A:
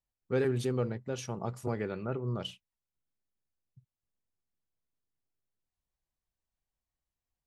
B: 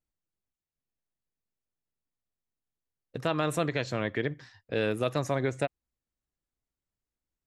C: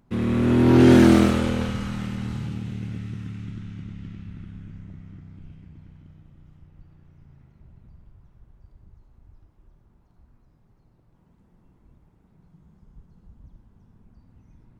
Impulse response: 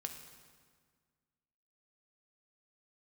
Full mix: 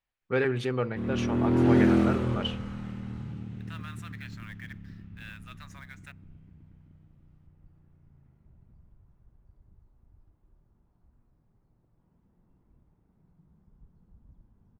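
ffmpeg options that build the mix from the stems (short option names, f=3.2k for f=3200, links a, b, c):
-filter_complex "[0:a]equalizer=f=2.3k:w=0.5:g=14.5,volume=-0.5dB,asplit=2[a][b];[b]volume=-17dB[c];[1:a]highpass=f=1.4k:w=0.5412,highpass=f=1.4k:w=1.3066,acrusher=bits=2:mode=log:mix=0:aa=0.000001,asoftclip=type=tanh:threshold=-20.5dB,adelay=450,volume=-5dB,asplit=2[d][e];[e]volume=-21dB[f];[2:a]adelay=850,volume=-7.5dB[g];[3:a]atrim=start_sample=2205[h];[c][f]amix=inputs=2:normalize=0[i];[i][h]afir=irnorm=-1:irlink=0[j];[a][d][g][j]amix=inputs=4:normalize=0,highshelf=f=2.8k:g=-11.5"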